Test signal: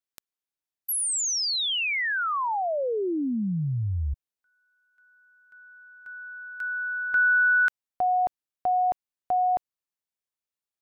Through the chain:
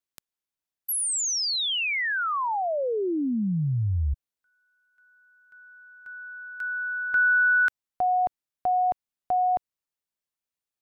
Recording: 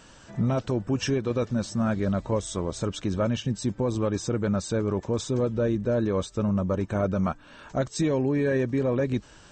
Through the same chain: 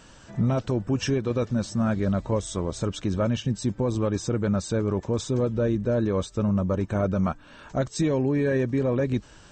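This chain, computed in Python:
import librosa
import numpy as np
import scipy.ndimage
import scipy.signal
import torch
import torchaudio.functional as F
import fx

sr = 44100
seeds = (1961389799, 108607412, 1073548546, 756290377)

y = fx.low_shelf(x, sr, hz=180.0, db=3.0)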